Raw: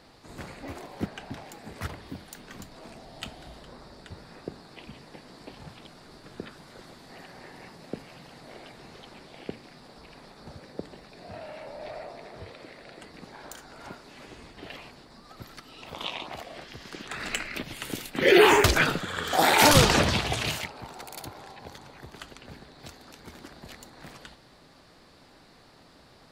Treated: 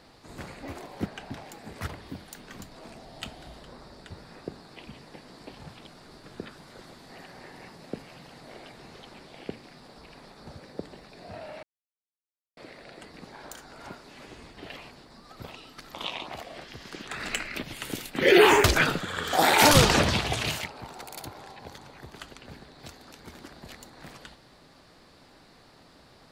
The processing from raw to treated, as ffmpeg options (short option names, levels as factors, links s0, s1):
-filter_complex "[0:a]asplit=5[s0][s1][s2][s3][s4];[s0]atrim=end=11.63,asetpts=PTS-STARTPTS,afade=t=out:st=11.626:d=0.004:c=hsin[s5];[s1]atrim=start=11.63:end=12.57,asetpts=PTS-STARTPTS,volume=0[s6];[s2]atrim=start=12.57:end=15.442,asetpts=PTS-STARTPTS,afade=t=in:d=0.004:c=hsin[s7];[s3]atrim=start=15.438:end=15.942,asetpts=PTS-STARTPTS,areverse[s8];[s4]atrim=start=15.938[s9];[s5][s6][s7]concat=n=3:v=0:a=1[s10];[s10][s8]acrossfade=d=0.004:c1=hsin:c2=hsin[s11];[s11][s9]acrossfade=d=0.004:c1=hsin:c2=hsin"